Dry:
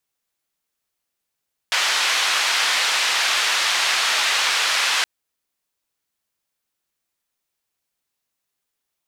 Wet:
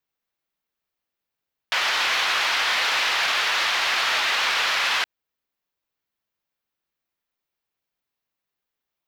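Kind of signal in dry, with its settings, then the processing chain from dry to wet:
band-limited noise 1,000–4,100 Hz, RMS −20 dBFS 3.32 s
parametric band 8,900 Hz −14 dB 1.2 octaves
leveller curve on the samples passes 1
brickwall limiter −15 dBFS

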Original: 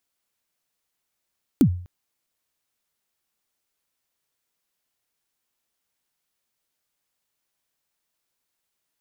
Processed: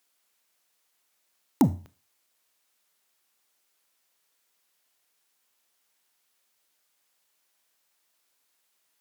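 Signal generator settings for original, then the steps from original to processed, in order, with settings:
synth kick length 0.25 s, from 320 Hz, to 89 Hz, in 81 ms, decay 0.48 s, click on, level −9 dB
sine wavefolder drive 3 dB, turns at −8 dBFS
high-pass filter 440 Hz 6 dB per octave
four-comb reverb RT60 0.35 s, combs from 25 ms, DRR 15 dB

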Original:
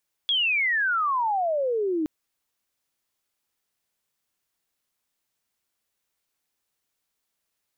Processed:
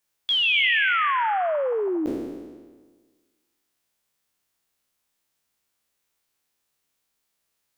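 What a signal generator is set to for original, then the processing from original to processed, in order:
glide logarithmic 3,400 Hz → 300 Hz −20 dBFS → −22.5 dBFS 1.77 s
peak hold with a decay on every bin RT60 1.49 s

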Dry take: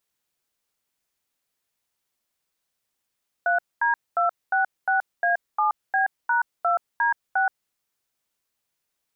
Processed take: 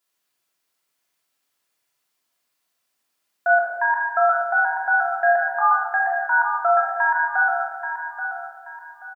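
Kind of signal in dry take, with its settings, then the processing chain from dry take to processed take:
touch tones "3D266A7B#2D6", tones 126 ms, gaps 228 ms, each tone −21 dBFS
high-pass filter 430 Hz 6 dB per octave
repeating echo 831 ms, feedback 31%, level −9 dB
rectangular room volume 1,100 cubic metres, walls mixed, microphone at 3.1 metres

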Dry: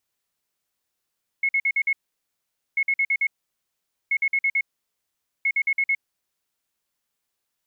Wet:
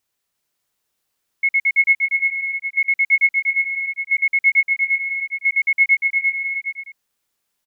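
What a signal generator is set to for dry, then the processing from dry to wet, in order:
beeps in groups sine 2,180 Hz, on 0.06 s, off 0.05 s, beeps 5, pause 0.84 s, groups 4, −18 dBFS
in parallel at +0.5 dB: output level in coarse steps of 11 dB
on the sum: bouncing-ball delay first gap 350 ms, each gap 0.7×, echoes 5

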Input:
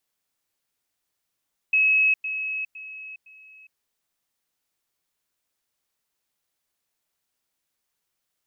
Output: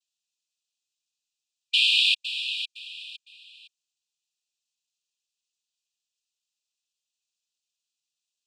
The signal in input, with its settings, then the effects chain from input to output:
level staircase 2,570 Hz −16 dBFS, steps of −10 dB, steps 4, 0.41 s 0.10 s
cochlear-implant simulation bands 6
linear-phase brick-wall high-pass 2,400 Hz

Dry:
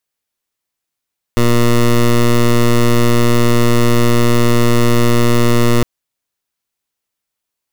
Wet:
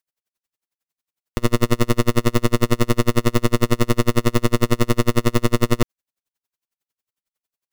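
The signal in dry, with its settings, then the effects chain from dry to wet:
pulse wave 119 Hz, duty 15% −10 dBFS 4.46 s
tremolo with a sine in dB 11 Hz, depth 36 dB

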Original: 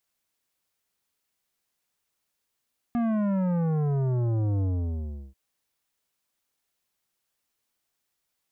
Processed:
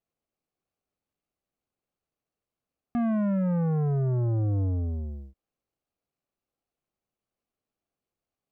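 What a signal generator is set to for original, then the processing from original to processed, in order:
bass drop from 240 Hz, over 2.39 s, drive 12 dB, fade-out 0.72 s, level −24 dB
running median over 25 samples
notch filter 940 Hz, Q 7

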